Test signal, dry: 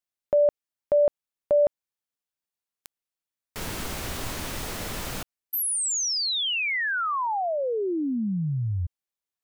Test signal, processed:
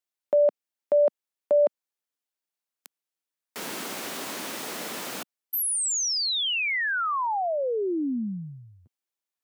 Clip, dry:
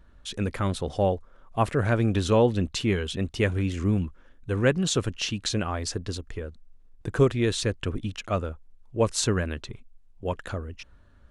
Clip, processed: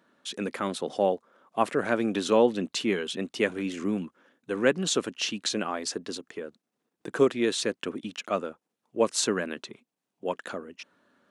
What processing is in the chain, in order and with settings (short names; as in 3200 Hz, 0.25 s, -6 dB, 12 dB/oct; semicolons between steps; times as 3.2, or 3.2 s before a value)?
HPF 210 Hz 24 dB/oct